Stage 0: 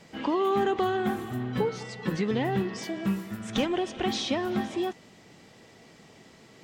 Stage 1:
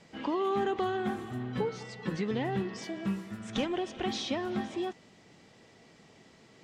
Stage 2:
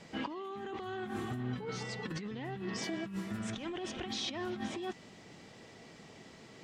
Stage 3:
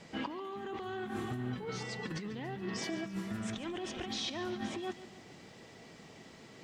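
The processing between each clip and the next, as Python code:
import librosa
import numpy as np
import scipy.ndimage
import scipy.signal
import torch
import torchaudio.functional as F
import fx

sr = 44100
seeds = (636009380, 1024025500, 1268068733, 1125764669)

y1 = scipy.signal.sosfilt(scipy.signal.butter(2, 8900.0, 'lowpass', fs=sr, output='sos'), x)
y1 = F.gain(torch.from_numpy(y1), -4.5).numpy()
y2 = fx.dynamic_eq(y1, sr, hz=540.0, q=0.97, threshold_db=-43.0, ratio=4.0, max_db=-5)
y2 = fx.over_compress(y2, sr, threshold_db=-39.0, ratio=-1.0)
y3 = fx.echo_crushed(y2, sr, ms=141, feedback_pct=55, bits=11, wet_db=-15.0)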